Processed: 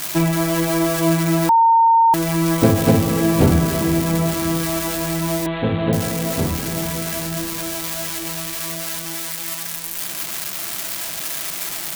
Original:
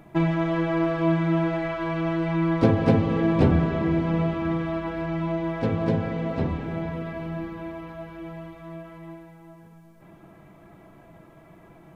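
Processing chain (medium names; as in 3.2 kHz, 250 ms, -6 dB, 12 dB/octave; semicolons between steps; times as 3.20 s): zero-crossing glitches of -16.5 dBFS; 1.49–2.14 s: bleep 914 Hz -14 dBFS; 5.46–5.93 s: steep low-pass 3.9 kHz 96 dB/octave; trim +4.5 dB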